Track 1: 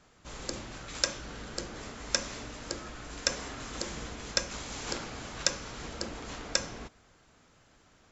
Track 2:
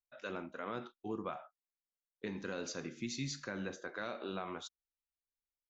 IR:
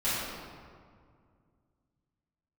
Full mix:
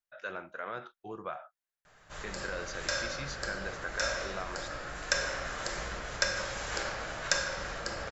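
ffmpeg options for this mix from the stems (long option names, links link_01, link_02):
-filter_complex "[0:a]adelay=1850,volume=-4.5dB,asplit=2[link_01][link_02];[link_02]volume=-9dB[link_03];[1:a]volume=-1dB,asplit=2[link_04][link_05];[link_05]apad=whole_len=439240[link_06];[link_01][link_06]sidechaincompress=threshold=-47dB:ratio=8:attack=16:release=186[link_07];[2:a]atrim=start_sample=2205[link_08];[link_03][link_08]afir=irnorm=-1:irlink=0[link_09];[link_07][link_04][link_09]amix=inputs=3:normalize=0,equalizer=frequency=250:width_type=o:width=0.67:gain=-10,equalizer=frequency=630:width_type=o:width=0.67:gain=5,equalizer=frequency=1600:width_type=o:width=0.67:gain=9"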